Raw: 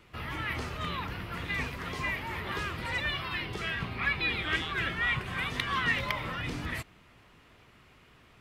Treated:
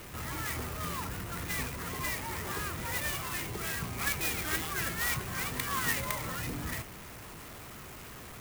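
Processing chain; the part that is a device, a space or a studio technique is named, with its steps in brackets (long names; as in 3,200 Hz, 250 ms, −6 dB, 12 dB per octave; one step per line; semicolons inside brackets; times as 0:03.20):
early CD player with a faulty converter (converter with a step at zero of −38 dBFS; converter with an unsteady clock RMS 0.068 ms)
level −3.5 dB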